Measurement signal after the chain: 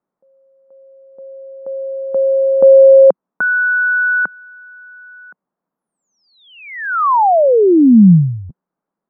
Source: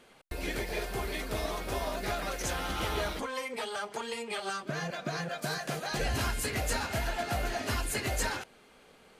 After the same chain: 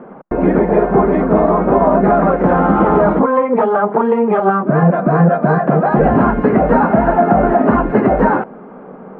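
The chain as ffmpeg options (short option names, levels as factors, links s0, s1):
-af "lowpass=f=1200:w=0.5412,lowpass=f=1200:w=1.3066,lowshelf=f=130:t=q:w=3:g=-11.5,alimiter=level_in=17.8:limit=0.891:release=50:level=0:latency=1,volume=0.891"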